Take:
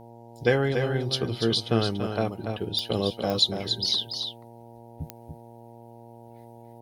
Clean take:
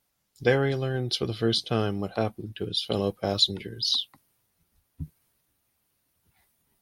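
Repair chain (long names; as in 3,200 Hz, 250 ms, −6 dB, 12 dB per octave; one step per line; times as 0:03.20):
click removal
hum removal 117 Hz, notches 8
echo removal 287 ms −6.5 dB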